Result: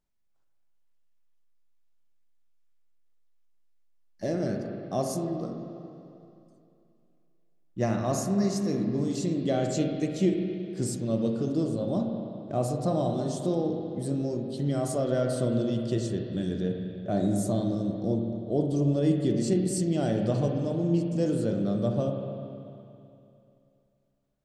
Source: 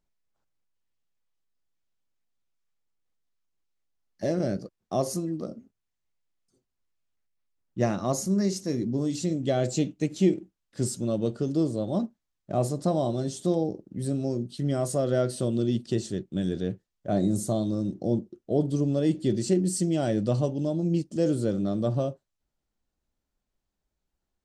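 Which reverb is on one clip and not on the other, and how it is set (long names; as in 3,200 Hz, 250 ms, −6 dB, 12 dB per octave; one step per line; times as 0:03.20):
spring reverb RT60 2.7 s, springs 35/44/48 ms, chirp 30 ms, DRR 2.5 dB
level −2.5 dB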